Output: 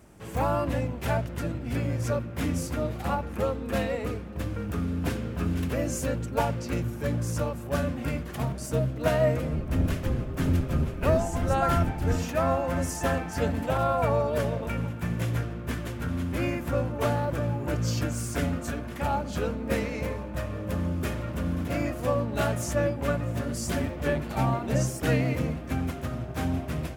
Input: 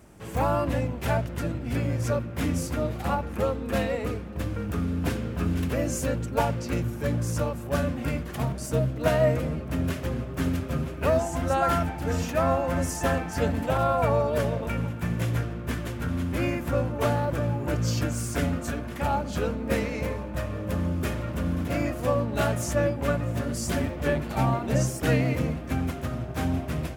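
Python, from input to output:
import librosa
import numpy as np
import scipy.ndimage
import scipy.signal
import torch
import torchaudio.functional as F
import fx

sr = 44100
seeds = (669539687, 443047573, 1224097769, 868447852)

y = fx.octave_divider(x, sr, octaves=1, level_db=2.0, at=(9.52, 12.16))
y = y * 10.0 ** (-1.5 / 20.0)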